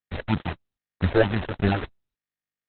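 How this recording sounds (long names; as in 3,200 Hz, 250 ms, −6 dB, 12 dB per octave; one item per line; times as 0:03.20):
aliases and images of a low sample rate 1,100 Hz, jitter 0%
phaser sweep stages 6, 3.2 Hz, lowest notch 190–1,000 Hz
a quantiser's noise floor 6 bits, dither none
Opus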